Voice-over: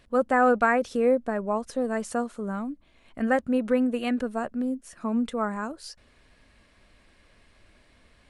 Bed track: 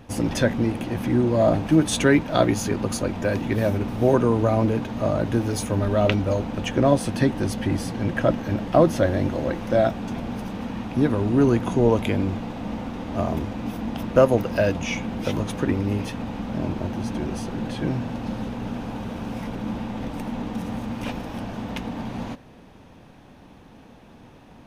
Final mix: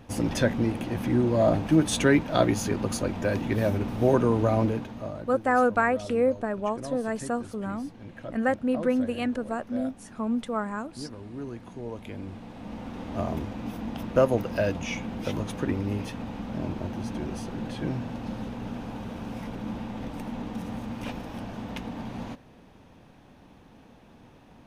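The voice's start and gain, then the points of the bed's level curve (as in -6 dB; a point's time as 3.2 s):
5.15 s, -1.5 dB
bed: 4.62 s -3 dB
5.39 s -19 dB
11.84 s -19 dB
12.99 s -5 dB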